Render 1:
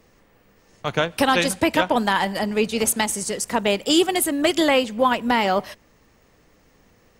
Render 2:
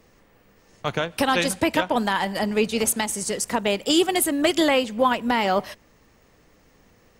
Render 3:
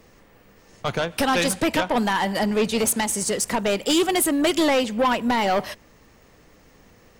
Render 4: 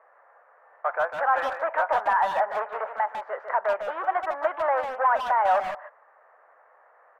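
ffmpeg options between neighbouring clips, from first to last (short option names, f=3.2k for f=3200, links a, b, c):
-af "alimiter=limit=-9dB:level=0:latency=1:release=291"
-af "asoftclip=type=tanh:threshold=-19dB,volume=4dB"
-filter_complex "[0:a]volume=19.5dB,asoftclip=hard,volume=-19.5dB,asuperpass=centerf=1000:order=8:qfactor=0.91,asplit=2[a][b];[b]adelay=150,highpass=300,lowpass=3.4k,asoftclip=type=hard:threshold=-25dB,volume=-7dB[c];[a][c]amix=inputs=2:normalize=0,volume=3.5dB"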